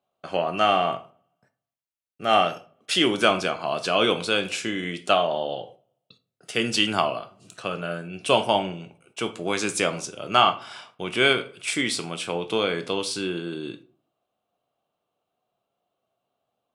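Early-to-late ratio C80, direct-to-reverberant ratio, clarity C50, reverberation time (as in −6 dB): 22.0 dB, 9.5 dB, 16.0 dB, 0.45 s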